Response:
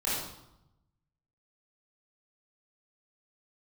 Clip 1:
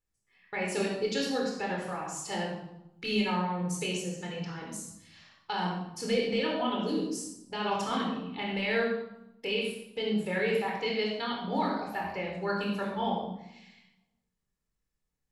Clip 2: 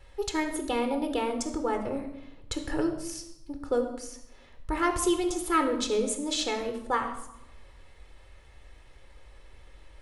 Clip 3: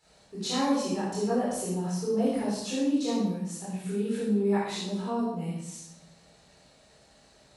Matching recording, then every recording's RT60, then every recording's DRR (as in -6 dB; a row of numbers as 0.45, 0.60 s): 3; 0.85, 0.85, 0.85 s; -2.0, 6.0, -9.5 dB